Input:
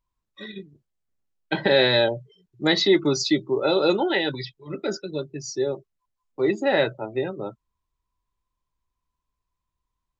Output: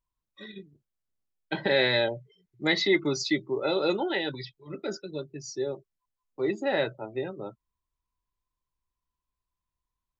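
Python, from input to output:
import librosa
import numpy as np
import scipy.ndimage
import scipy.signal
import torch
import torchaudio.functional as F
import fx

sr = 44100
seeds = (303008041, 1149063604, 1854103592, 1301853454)

y = fx.peak_eq(x, sr, hz=2100.0, db=9.5, octaves=0.27, at=(1.69, 3.94))
y = y * 10.0 ** (-6.0 / 20.0)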